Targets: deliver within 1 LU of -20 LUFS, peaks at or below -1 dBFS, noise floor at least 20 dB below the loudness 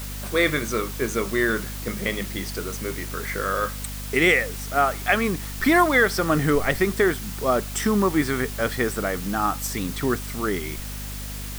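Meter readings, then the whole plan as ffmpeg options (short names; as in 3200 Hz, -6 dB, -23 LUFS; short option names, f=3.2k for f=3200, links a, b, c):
hum 50 Hz; harmonics up to 250 Hz; hum level -32 dBFS; noise floor -33 dBFS; noise floor target -44 dBFS; loudness -23.5 LUFS; peak -5.0 dBFS; loudness target -20.0 LUFS
-> -af "bandreject=f=50:t=h:w=4,bandreject=f=100:t=h:w=4,bandreject=f=150:t=h:w=4,bandreject=f=200:t=h:w=4,bandreject=f=250:t=h:w=4"
-af "afftdn=nr=11:nf=-33"
-af "volume=3.5dB"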